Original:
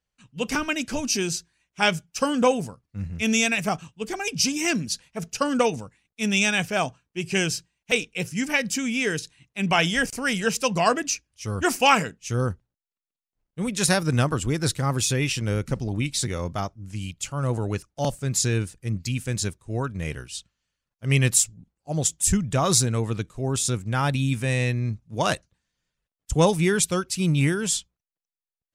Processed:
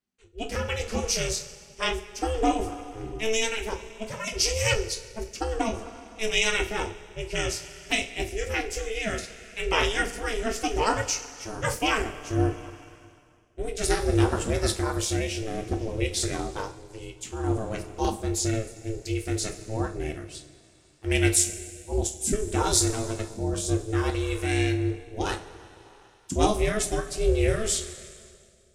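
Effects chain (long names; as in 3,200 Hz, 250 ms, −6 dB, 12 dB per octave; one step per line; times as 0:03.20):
coupled-rooms reverb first 0.25 s, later 2.6 s, from −18 dB, DRR 2 dB
rotating-speaker cabinet horn 0.6 Hz
ring modulation 220 Hz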